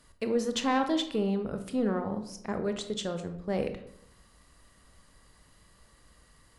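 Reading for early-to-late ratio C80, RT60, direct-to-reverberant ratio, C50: 13.0 dB, 0.75 s, 7.0 dB, 10.0 dB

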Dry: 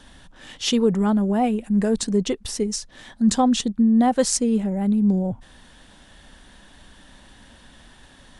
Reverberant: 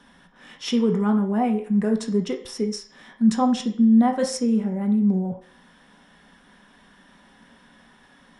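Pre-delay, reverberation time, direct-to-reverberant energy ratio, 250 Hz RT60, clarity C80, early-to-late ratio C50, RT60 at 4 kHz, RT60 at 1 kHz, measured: 3 ms, 0.50 s, 3.0 dB, 0.45 s, 14.5 dB, 10.0 dB, 0.60 s, 0.50 s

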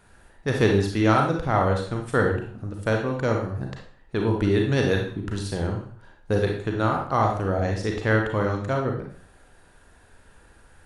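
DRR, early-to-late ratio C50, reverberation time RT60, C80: 1.0 dB, 4.0 dB, 0.45 s, 9.5 dB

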